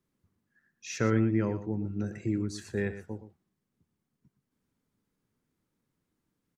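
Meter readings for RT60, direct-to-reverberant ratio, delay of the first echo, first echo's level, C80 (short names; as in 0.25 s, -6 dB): none, none, 0.118 s, -12.0 dB, none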